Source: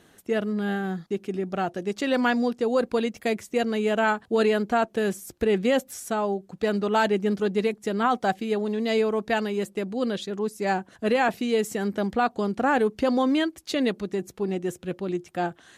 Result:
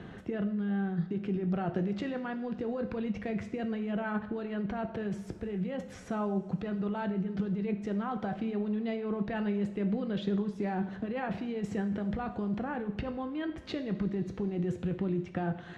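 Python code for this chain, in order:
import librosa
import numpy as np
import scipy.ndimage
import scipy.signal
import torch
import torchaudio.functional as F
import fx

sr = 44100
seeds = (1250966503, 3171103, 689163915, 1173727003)

y = scipy.signal.sosfilt(scipy.signal.butter(2, 5100.0, 'lowpass', fs=sr, output='sos'), x)
y = fx.bass_treble(y, sr, bass_db=10, treble_db=-14)
y = fx.over_compress(y, sr, threshold_db=-28.0, ratio=-1.0)
y = fx.rev_double_slope(y, sr, seeds[0], early_s=0.6, late_s=4.9, knee_db=-22, drr_db=6.5)
y = fx.band_squash(y, sr, depth_pct=40)
y = y * librosa.db_to_amplitude(-6.0)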